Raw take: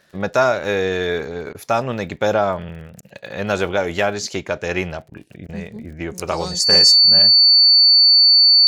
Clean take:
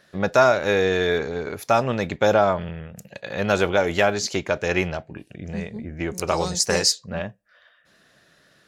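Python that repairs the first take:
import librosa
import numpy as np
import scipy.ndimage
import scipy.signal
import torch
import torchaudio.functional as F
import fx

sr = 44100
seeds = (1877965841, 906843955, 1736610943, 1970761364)

y = fx.fix_declick_ar(x, sr, threshold=6.5)
y = fx.notch(y, sr, hz=4500.0, q=30.0)
y = fx.fix_interpolate(y, sr, at_s=(1.53, 3.01, 5.1, 5.47), length_ms=16.0)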